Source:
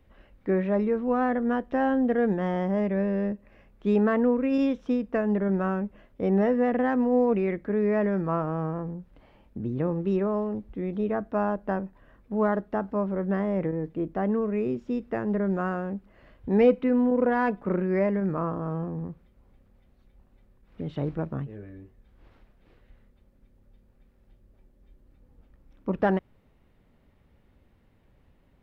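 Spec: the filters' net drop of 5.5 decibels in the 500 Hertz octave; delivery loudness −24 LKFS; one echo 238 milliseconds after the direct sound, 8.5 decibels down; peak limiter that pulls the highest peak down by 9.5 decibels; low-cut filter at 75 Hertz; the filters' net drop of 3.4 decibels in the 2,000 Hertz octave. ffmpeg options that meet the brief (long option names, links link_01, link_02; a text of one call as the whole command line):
ffmpeg -i in.wav -af "highpass=75,equalizer=frequency=500:width_type=o:gain=-6.5,equalizer=frequency=2000:width_type=o:gain=-4,alimiter=limit=-24dB:level=0:latency=1,aecho=1:1:238:0.376,volume=8.5dB" out.wav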